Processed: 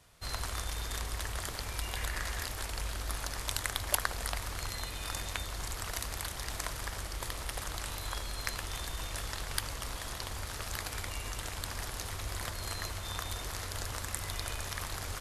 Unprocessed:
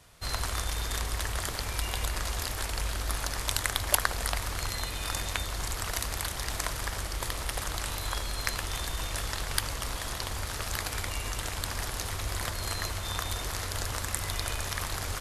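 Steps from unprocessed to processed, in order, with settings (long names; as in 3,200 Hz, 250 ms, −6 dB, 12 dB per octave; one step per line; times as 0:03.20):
0:01.96–0:02.46: parametric band 1,800 Hz +8.5 dB 0.51 octaves
level −5 dB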